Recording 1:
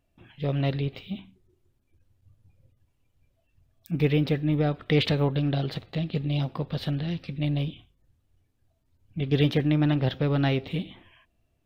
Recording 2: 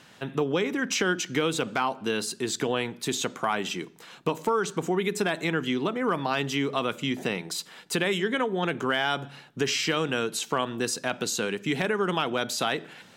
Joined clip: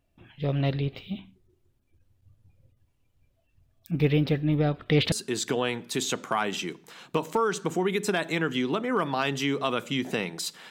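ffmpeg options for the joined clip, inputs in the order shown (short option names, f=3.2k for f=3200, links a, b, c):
-filter_complex "[0:a]apad=whole_dur=10.7,atrim=end=10.7,atrim=end=5.122[a];[1:a]atrim=start=2.238:end=7.82[b];[a][b]acrossfade=d=0.004:c1=hsin:c2=hsin"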